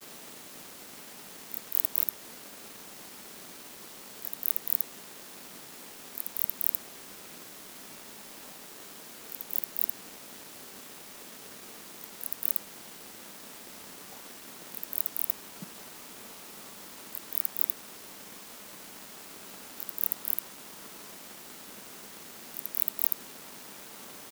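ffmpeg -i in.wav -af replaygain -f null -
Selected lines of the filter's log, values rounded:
track_gain = +30.8 dB
track_peak = 0.358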